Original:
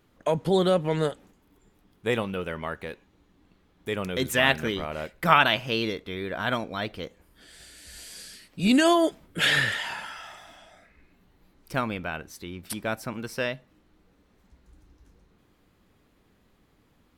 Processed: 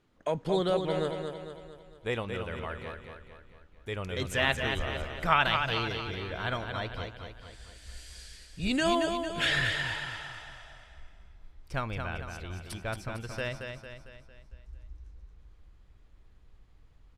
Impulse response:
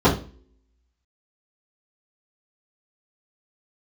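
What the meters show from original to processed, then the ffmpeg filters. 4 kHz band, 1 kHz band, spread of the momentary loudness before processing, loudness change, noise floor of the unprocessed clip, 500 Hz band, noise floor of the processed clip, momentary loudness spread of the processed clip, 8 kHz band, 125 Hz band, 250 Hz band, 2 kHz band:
−4.5 dB, −4.5 dB, 20 LU, −5.5 dB, −64 dBFS, −5.0 dB, −57 dBFS, 21 LU, −7.0 dB, −2.0 dB, −7.5 dB, −4.5 dB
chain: -af "aecho=1:1:226|452|678|904|1130|1356:0.501|0.251|0.125|0.0626|0.0313|0.0157,asubboost=boost=10:cutoff=68,lowpass=8200,volume=-5.5dB"

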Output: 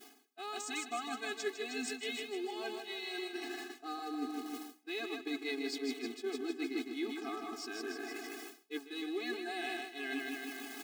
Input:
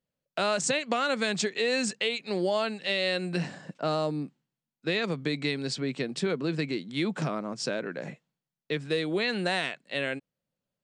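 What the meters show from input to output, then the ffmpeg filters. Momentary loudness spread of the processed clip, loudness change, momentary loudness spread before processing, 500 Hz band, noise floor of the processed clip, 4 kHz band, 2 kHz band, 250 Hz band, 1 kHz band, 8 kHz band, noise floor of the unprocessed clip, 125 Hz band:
6 LU, −10.0 dB, 8 LU, −11.5 dB, −61 dBFS, −10.0 dB, −9.0 dB, −8.0 dB, −8.5 dB, −10.0 dB, below −85 dBFS, below −35 dB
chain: -af "aeval=exprs='val(0)+0.5*0.0126*sgn(val(0))':channel_layout=same,aecho=1:1:156|312|468|624|780|936|1092|1248:0.501|0.301|0.18|0.108|0.065|0.039|0.0234|0.014,areverse,acompressor=threshold=-43dB:ratio=6,areverse,agate=range=-33dB:threshold=-39dB:ratio=3:detection=peak,afftfilt=real='re*eq(mod(floor(b*sr/1024/220),2),1)':imag='im*eq(mod(floor(b*sr/1024/220),2),1)':win_size=1024:overlap=0.75,volume=12.5dB"

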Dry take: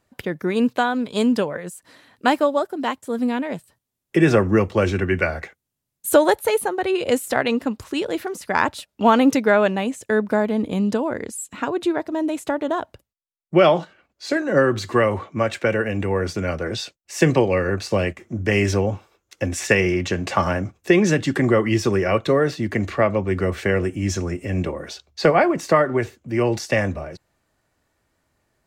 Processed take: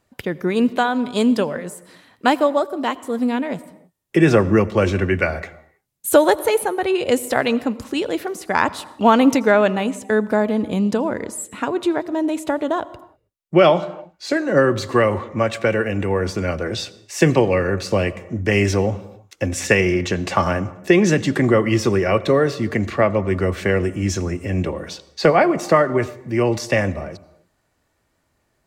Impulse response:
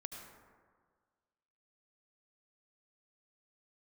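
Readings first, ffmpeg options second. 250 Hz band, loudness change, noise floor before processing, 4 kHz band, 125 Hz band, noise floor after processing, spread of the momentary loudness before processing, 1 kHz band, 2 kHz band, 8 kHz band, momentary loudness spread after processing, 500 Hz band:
+2.0 dB, +2.0 dB, −79 dBFS, +1.5 dB, +2.0 dB, −68 dBFS, 10 LU, +1.5 dB, +1.0 dB, +2.0 dB, 10 LU, +2.0 dB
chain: -filter_complex "[0:a]asplit=2[link_01][link_02];[link_02]equalizer=frequency=1600:width_type=o:width=0.21:gain=-10[link_03];[1:a]atrim=start_sample=2205,afade=type=out:start_time=0.36:duration=0.01,atrim=end_sample=16317,asetrate=41013,aresample=44100[link_04];[link_03][link_04]afir=irnorm=-1:irlink=0,volume=-8.5dB[link_05];[link_01][link_05]amix=inputs=2:normalize=0"

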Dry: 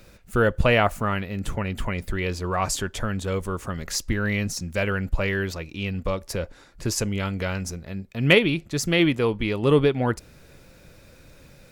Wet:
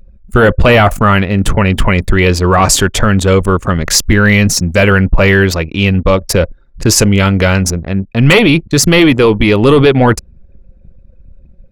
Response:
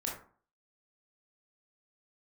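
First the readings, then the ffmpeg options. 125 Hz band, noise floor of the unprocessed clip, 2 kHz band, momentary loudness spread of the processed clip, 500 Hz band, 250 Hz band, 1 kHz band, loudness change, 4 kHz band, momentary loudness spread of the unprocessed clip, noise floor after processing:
+15.5 dB, −51 dBFS, +14.0 dB, 6 LU, +13.5 dB, +15.0 dB, +14.5 dB, +14.5 dB, +14.0 dB, 12 LU, −43 dBFS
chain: -af "apsyclip=20dB,anlmdn=10000,volume=-2dB"

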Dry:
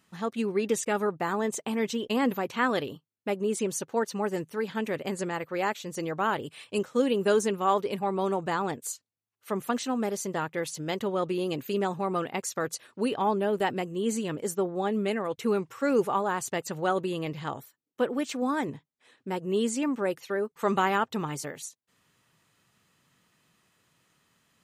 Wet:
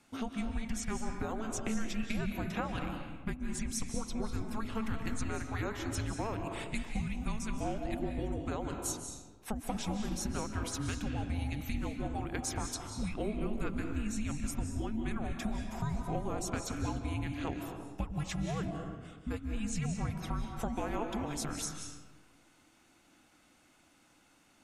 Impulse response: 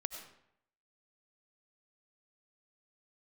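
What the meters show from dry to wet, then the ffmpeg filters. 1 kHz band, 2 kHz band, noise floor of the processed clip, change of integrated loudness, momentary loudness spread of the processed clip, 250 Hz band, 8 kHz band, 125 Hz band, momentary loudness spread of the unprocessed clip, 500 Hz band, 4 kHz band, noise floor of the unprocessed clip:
−11.5 dB, −9.0 dB, −65 dBFS, −8.0 dB, 3 LU, −6.0 dB, −3.5 dB, +2.0 dB, 8 LU, −14.0 dB, −6.5 dB, −81 dBFS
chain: -filter_complex "[0:a]afreqshift=-440,acompressor=threshold=-35dB:ratio=6[link_01];[1:a]atrim=start_sample=2205,asetrate=22932,aresample=44100[link_02];[link_01][link_02]afir=irnorm=-1:irlink=0"

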